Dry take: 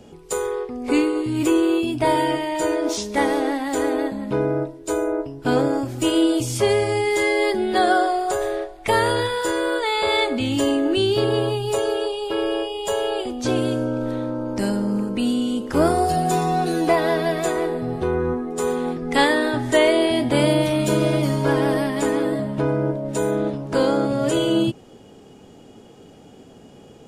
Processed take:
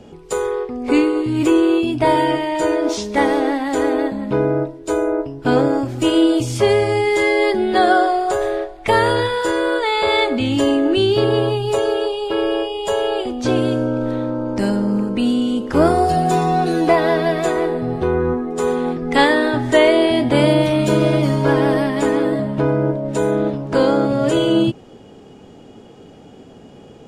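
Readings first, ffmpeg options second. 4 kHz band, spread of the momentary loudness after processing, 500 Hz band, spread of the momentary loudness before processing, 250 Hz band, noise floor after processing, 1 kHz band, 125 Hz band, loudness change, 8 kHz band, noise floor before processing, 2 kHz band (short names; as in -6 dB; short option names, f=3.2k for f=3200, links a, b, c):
+2.0 dB, 6 LU, +4.0 dB, 6 LU, +4.0 dB, -42 dBFS, +4.0 dB, +4.0 dB, +4.0 dB, -2.0 dB, -46 dBFS, +3.5 dB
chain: -af "highshelf=f=7.6k:g=-12,volume=4dB"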